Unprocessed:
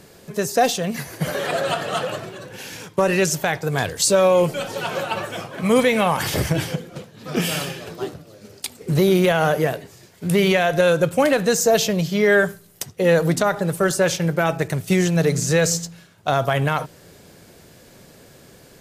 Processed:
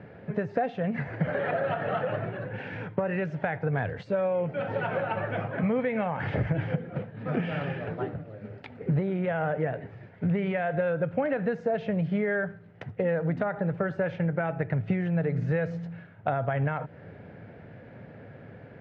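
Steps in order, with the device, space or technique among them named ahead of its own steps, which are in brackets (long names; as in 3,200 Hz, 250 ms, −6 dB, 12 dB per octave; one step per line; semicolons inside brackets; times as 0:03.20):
bass amplifier (downward compressor 6 to 1, threshold −26 dBFS, peak gain reduction 13.5 dB; loudspeaker in its box 79–2,000 Hz, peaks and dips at 110 Hz +7 dB, 360 Hz −7 dB, 1,100 Hz −9 dB)
level +2.5 dB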